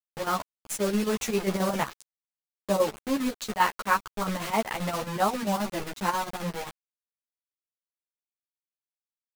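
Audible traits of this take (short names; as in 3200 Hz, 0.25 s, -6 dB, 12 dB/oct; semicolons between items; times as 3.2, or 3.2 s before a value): a quantiser's noise floor 6-bit, dither none; chopped level 7.5 Hz, depth 60%, duty 70%; a shimmering, thickened sound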